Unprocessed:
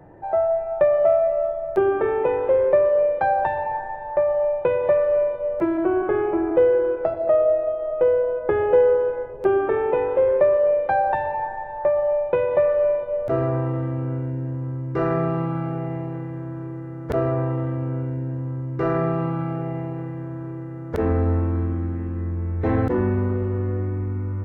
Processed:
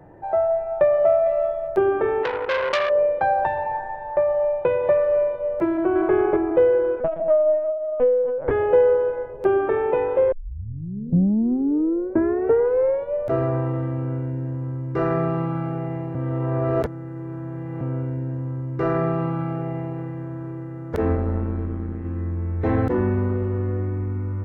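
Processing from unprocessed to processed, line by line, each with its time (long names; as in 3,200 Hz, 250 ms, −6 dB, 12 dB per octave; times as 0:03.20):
0:01.26–0:01.68: high-shelf EQ 2,500 Hz +11.5 dB
0:02.23–0:02.90: saturating transformer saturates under 2,500 Hz
0:05.71–0:06.12: delay throw 240 ms, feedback 10%, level −1.5 dB
0:07.00–0:08.51: linear-prediction vocoder at 8 kHz pitch kept
0:10.32: tape start 2.83 s
0:16.15–0:17.81: reverse
0:21.15–0:22.05: amplitude modulation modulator 120 Hz, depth 55%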